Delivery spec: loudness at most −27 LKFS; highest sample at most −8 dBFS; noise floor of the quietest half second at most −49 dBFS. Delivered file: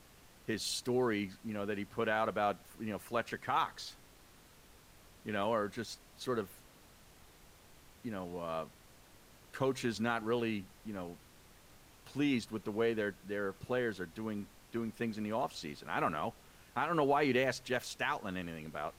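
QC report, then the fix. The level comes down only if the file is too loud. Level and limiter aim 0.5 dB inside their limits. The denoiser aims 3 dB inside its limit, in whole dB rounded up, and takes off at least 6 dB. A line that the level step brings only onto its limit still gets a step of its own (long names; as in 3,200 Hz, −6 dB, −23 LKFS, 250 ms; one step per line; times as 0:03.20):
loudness −36.5 LKFS: in spec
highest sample −19.5 dBFS: in spec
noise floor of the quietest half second −60 dBFS: in spec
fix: no processing needed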